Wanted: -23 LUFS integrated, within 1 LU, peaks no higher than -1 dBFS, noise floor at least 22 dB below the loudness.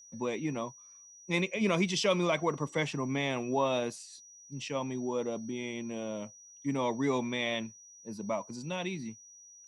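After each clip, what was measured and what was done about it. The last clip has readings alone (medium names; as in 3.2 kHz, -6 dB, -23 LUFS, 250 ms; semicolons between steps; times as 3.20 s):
steady tone 5.8 kHz; tone level -52 dBFS; loudness -33.0 LUFS; peak level -15.0 dBFS; loudness target -23.0 LUFS
-> band-stop 5.8 kHz, Q 30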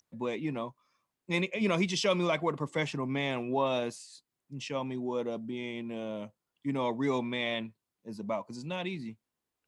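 steady tone not found; loudness -33.0 LUFS; peak level -15.0 dBFS; loudness target -23.0 LUFS
-> trim +10 dB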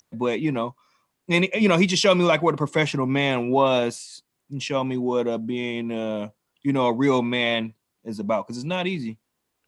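loudness -23.0 LUFS; peak level -5.0 dBFS; noise floor -78 dBFS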